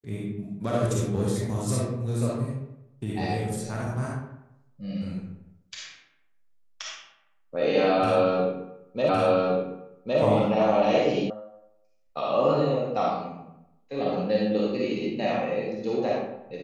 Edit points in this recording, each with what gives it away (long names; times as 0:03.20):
0:09.09: the same again, the last 1.11 s
0:11.30: cut off before it has died away